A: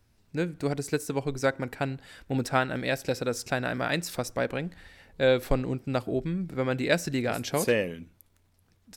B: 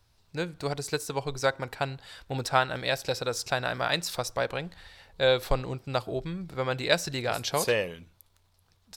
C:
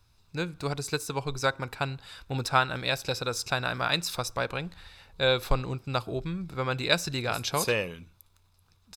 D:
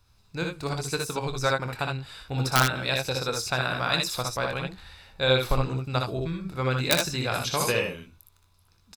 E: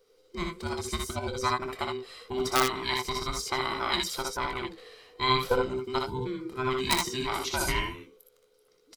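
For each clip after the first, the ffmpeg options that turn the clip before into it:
-af "equalizer=f=250:t=o:w=1:g=-10,equalizer=f=1000:t=o:w=1:g=5,equalizer=f=2000:t=o:w=1:g=-3,equalizer=f=4000:t=o:w=1:g=7"
-af "aecho=1:1:0.8:0.34"
-af "aeval=exprs='(mod(2.99*val(0)+1,2)-1)/2.99':c=same,aecho=1:1:24|62|77:0.282|0.596|0.501"
-af "afftfilt=real='real(if(between(b,1,1008),(2*floor((b-1)/24)+1)*24-b,b),0)':imag='imag(if(between(b,1,1008),(2*floor((b-1)/24)+1)*24-b,b),0)*if(between(b,1,1008),-1,1)':win_size=2048:overlap=0.75,volume=0.708"

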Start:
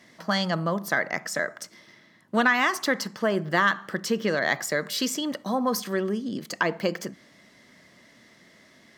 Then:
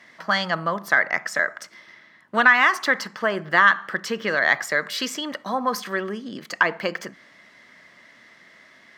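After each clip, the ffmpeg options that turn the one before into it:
-af "equalizer=f=1600:w=0.45:g=13,volume=0.531"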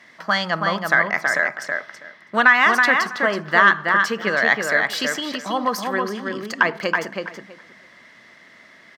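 -filter_complex "[0:a]asplit=2[s0][s1];[s1]adelay=325,lowpass=f=3300:p=1,volume=0.668,asplit=2[s2][s3];[s3]adelay=325,lowpass=f=3300:p=1,volume=0.17,asplit=2[s4][s5];[s5]adelay=325,lowpass=f=3300:p=1,volume=0.17[s6];[s0][s2][s4][s6]amix=inputs=4:normalize=0,volume=1.19"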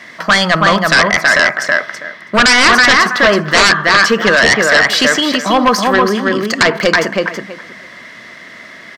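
-filter_complex "[0:a]aeval=exprs='0.891*sin(PI/2*4.47*val(0)/0.891)':c=same,bandreject=f=850:w=12,acrossover=split=8100[s0][s1];[s1]acompressor=threshold=0.0251:ratio=4:attack=1:release=60[s2];[s0][s2]amix=inputs=2:normalize=0,volume=0.708"

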